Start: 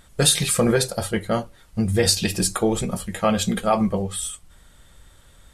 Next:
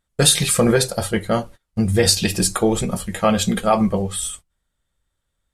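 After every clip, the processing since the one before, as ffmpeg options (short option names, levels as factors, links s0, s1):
-af "agate=range=0.0447:threshold=0.0112:ratio=16:detection=peak,volume=1.41"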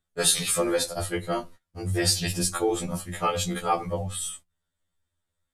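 -filter_complex "[0:a]acrossover=split=360|960[s0][s1][s2];[s0]alimiter=limit=0.141:level=0:latency=1:release=41[s3];[s3][s1][s2]amix=inputs=3:normalize=0,afftfilt=real='re*2*eq(mod(b,4),0)':imag='im*2*eq(mod(b,4),0)':win_size=2048:overlap=0.75,volume=0.631"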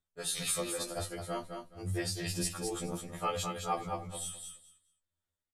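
-filter_complex "[0:a]tremolo=f=2.1:d=0.65,asplit=2[s0][s1];[s1]aecho=0:1:211|422|633:0.501|0.0952|0.0181[s2];[s0][s2]amix=inputs=2:normalize=0,volume=0.447"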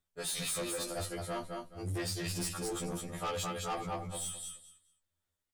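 -af "asoftclip=type=tanh:threshold=0.0178,volume=1.41"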